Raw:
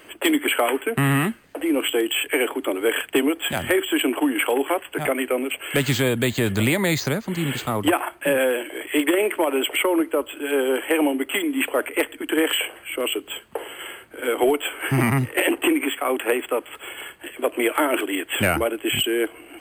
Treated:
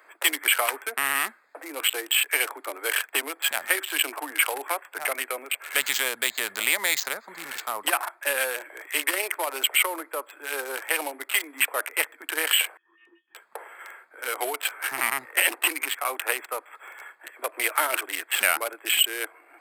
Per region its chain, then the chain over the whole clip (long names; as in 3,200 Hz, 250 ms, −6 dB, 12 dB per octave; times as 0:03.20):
0:12.77–0:13.35: resonances in every octave F#, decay 0.16 s + voice inversion scrambler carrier 3,300 Hz
whole clip: adaptive Wiener filter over 15 samples; high-pass filter 860 Hz 12 dB per octave; spectral tilt +2 dB per octave